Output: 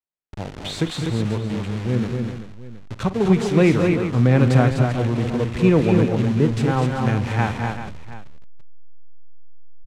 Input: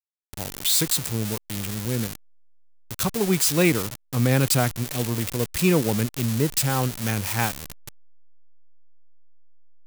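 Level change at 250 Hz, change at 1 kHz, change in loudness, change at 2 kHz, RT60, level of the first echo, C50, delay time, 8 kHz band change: +6.5 dB, +4.5 dB, +3.0 dB, +1.0 dB, no reverb audible, −15.0 dB, no reverb audible, 48 ms, −15.5 dB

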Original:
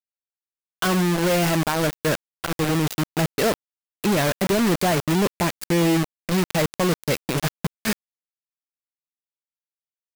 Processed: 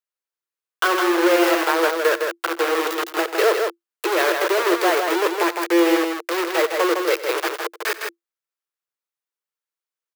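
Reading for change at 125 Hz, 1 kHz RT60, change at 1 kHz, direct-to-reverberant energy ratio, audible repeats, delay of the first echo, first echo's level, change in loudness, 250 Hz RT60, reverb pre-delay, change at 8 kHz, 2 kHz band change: below −40 dB, no reverb audible, +5.5 dB, no reverb audible, 2, 90 ms, −16.0 dB, +2.5 dB, no reverb audible, no reverb audible, −1.5 dB, +6.0 dB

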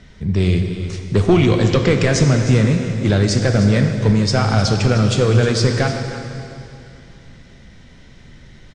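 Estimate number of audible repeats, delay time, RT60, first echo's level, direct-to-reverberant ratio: 1, 308 ms, 2.7 s, −13.5 dB, 4.0 dB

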